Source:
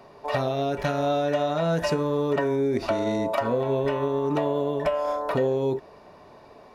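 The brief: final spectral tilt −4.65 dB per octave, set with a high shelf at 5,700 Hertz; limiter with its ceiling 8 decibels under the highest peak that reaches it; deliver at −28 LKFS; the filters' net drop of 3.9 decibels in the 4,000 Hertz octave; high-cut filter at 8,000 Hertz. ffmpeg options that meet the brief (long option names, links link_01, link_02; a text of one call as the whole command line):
ffmpeg -i in.wav -af "lowpass=8000,equalizer=frequency=4000:width_type=o:gain=-7,highshelf=frequency=5700:gain=6,volume=-1dB,alimiter=limit=-18.5dB:level=0:latency=1" out.wav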